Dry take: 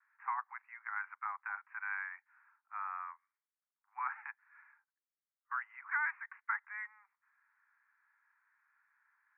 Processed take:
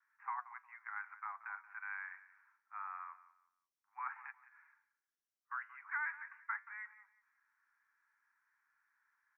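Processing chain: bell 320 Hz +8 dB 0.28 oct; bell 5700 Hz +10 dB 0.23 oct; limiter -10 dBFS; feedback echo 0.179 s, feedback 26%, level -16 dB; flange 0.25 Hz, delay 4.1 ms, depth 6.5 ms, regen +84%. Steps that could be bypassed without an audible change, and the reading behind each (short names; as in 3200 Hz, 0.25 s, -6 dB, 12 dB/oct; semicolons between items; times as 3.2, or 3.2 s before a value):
bell 320 Hz: input band starts at 720 Hz; bell 5700 Hz: input band ends at 2600 Hz; limiter -10 dBFS: input peak -23.5 dBFS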